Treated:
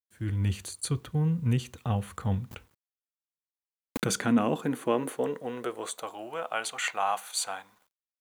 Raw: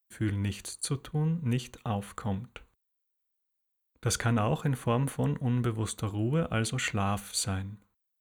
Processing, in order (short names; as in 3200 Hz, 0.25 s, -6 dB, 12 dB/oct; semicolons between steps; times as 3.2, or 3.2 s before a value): opening faded in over 0.52 s; high-pass sweep 82 Hz -> 780 Hz, 2.56–6.39; bit-crush 11-bit; 2.51–4.19 backwards sustainer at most 35 dB/s